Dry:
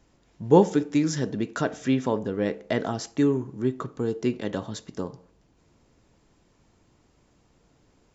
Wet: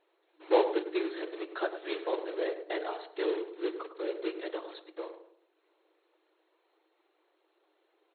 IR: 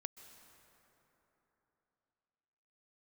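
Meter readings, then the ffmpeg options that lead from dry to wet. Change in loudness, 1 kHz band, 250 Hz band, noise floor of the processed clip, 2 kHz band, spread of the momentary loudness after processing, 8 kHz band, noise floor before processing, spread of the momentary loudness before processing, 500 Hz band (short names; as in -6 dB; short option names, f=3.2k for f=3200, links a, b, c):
-8.0 dB, -5.5 dB, -13.0 dB, -75 dBFS, -4.0 dB, 15 LU, n/a, -64 dBFS, 15 LU, -5.5 dB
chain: -filter_complex "[0:a]acrusher=bits=3:mode=log:mix=0:aa=0.000001,afftfilt=real='hypot(re,im)*cos(2*PI*random(0))':imag='hypot(re,im)*sin(2*PI*random(1))':win_size=512:overlap=0.75,afftfilt=real='re*between(b*sr/4096,310,4300)':imag='im*between(b*sr/4096,310,4300)':win_size=4096:overlap=0.75,asplit=2[a][b];[b]adelay=104,lowpass=f=1.1k:p=1,volume=-9dB,asplit=2[c][d];[d]adelay=104,lowpass=f=1.1k:p=1,volume=0.38,asplit=2[e][f];[f]adelay=104,lowpass=f=1.1k:p=1,volume=0.38,asplit=2[g][h];[h]adelay=104,lowpass=f=1.1k:p=1,volume=0.38[i];[c][e][g][i]amix=inputs=4:normalize=0[j];[a][j]amix=inputs=2:normalize=0"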